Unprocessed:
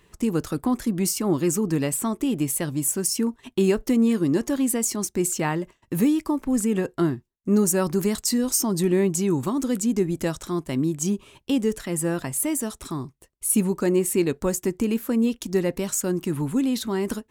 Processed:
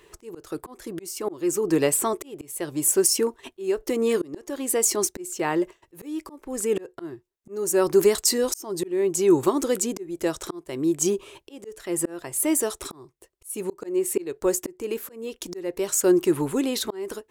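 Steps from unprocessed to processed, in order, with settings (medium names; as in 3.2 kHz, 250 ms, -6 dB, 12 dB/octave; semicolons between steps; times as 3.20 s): resonant low shelf 290 Hz -7 dB, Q 3; slow attack 525 ms; trim +4 dB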